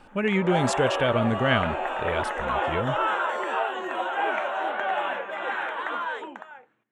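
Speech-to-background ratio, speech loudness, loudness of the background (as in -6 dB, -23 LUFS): 1.5 dB, -26.5 LUFS, -28.0 LUFS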